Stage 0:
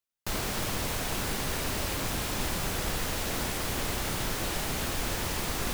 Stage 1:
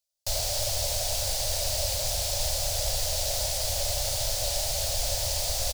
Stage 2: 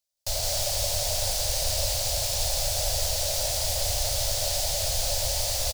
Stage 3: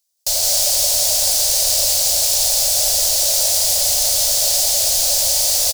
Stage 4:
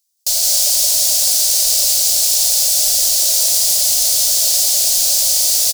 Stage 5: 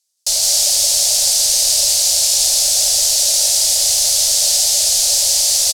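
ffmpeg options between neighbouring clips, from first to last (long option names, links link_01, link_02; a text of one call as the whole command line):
ffmpeg -i in.wav -af "firequalizer=gain_entry='entry(100,0);entry(190,-28);entry(380,-24);entry(570,6);entry(1100,-16);entry(4600,7);entry(12000,1)':delay=0.05:min_phase=1,volume=3dB" out.wav
ffmpeg -i in.wav -af "aecho=1:1:170:0.668" out.wav
ffmpeg -i in.wav -af "bass=frequency=250:gain=-11,treble=frequency=4000:gain=10,volume=4dB" out.wav
ffmpeg -i in.wav -af "highshelf=frequency=2000:gain=10,volume=-7dB" out.wav
ffmpeg -i in.wav -af "lowpass=10000,volume=2dB" out.wav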